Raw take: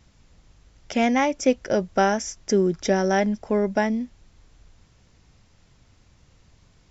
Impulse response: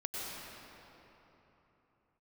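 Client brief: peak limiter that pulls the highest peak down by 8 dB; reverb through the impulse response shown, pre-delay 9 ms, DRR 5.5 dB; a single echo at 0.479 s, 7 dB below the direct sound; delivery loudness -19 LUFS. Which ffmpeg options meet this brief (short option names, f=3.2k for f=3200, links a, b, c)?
-filter_complex "[0:a]alimiter=limit=-16dB:level=0:latency=1,aecho=1:1:479:0.447,asplit=2[a][b];[1:a]atrim=start_sample=2205,adelay=9[c];[b][c]afir=irnorm=-1:irlink=0,volume=-8.5dB[d];[a][d]amix=inputs=2:normalize=0,volume=6dB"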